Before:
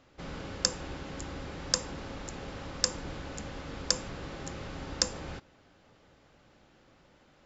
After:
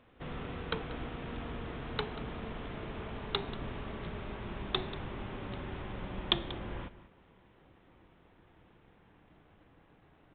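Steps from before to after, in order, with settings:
gliding playback speed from 91% → 53%
slap from a distant wall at 32 metres, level −15 dB
G.726 40 kbit/s 8,000 Hz

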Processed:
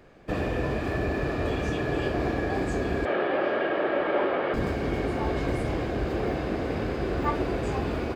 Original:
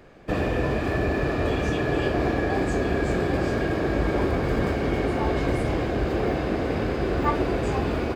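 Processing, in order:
0:03.05–0:04.54: loudspeaker in its box 330–3,600 Hz, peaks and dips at 360 Hz +3 dB, 580 Hz +9 dB, 870 Hz +5 dB, 1,300 Hz +8 dB, 1,900 Hz +5 dB, 3,000 Hz +7 dB
level −3.5 dB

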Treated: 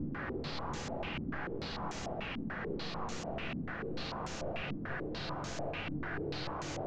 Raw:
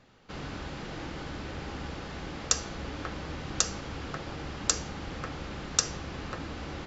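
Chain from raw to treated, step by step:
high-pass filter 48 Hz
low-shelf EQ 180 Hz +4 dB
half-wave rectification
extreme stretch with random phases 29×, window 0.25 s, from 0:00.75
low-pass on a step sequencer 6.8 Hz 260–6,800 Hz
level +1 dB

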